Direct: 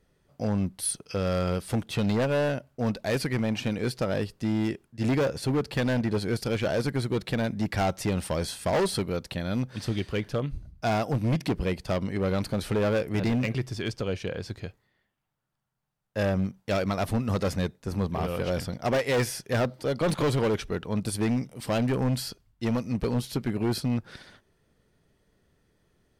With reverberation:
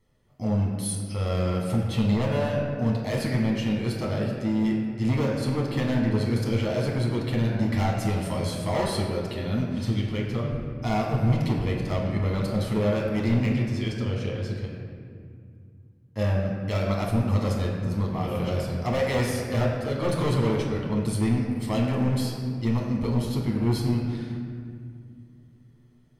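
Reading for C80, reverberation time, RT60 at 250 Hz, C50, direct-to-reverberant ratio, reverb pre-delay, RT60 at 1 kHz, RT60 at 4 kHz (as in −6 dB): 3.5 dB, 2.2 s, 3.5 s, 2.0 dB, −2.5 dB, 9 ms, 2.0 s, 1.3 s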